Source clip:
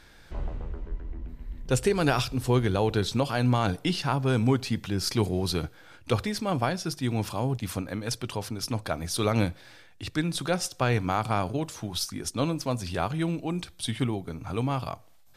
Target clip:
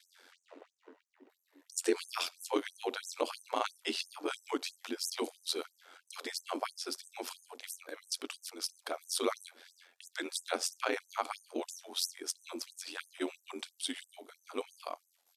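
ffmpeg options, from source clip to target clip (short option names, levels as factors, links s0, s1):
-af "bass=f=250:g=3,treble=f=4000:g=2,asetrate=42845,aresample=44100,atempo=1.0293,aeval=exprs='val(0)*sin(2*PI*44*n/s)':c=same,afftfilt=real='re*gte(b*sr/1024,230*pow(6100/230,0.5+0.5*sin(2*PI*3*pts/sr)))':imag='im*gte(b*sr/1024,230*pow(6100/230,0.5+0.5*sin(2*PI*3*pts/sr)))':win_size=1024:overlap=0.75,volume=0.794"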